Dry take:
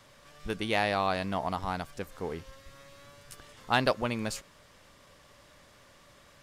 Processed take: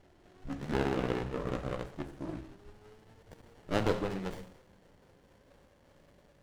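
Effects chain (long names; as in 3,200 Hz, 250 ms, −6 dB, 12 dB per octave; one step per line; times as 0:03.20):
pitch glide at a constant tempo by −8.5 semitones ending unshifted
coupled-rooms reverb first 0.74 s, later 3.4 s, from −27 dB, DRR 4.5 dB
windowed peak hold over 33 samples
level −2 dB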